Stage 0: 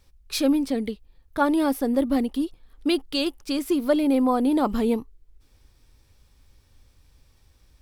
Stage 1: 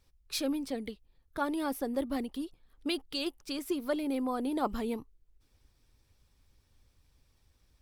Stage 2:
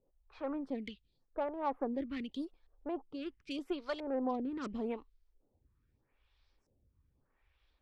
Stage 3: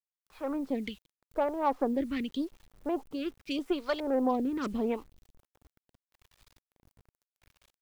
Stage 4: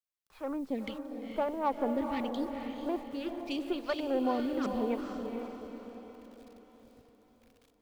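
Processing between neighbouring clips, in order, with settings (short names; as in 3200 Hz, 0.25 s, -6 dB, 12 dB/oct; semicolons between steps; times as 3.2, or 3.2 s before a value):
harmonic-percussive split harmonic -6 dB; gain -6 dB
LFO low-pass saw up 0.75 Hz 500–6600 Hz; added harmonics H 8 -27 dB, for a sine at -16.5 dBFS; photocell phaser 0.83 Hz; gain -2.5 dB
AGC gain up to 7 dB; bit-crush 10-bit
diffused feedback echo 0.468 s, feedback 48%, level -5.5 dB; gain -2.5 dB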